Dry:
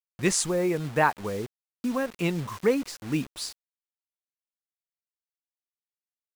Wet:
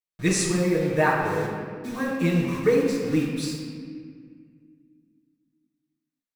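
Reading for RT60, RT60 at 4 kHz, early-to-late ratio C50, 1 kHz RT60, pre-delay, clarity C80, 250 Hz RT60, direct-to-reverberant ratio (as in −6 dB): 1.9 s, 1.3 s, 1.0 dB, 1.7 s, 6 ms, 2.5 dB, 2.9 s, −11.5 dB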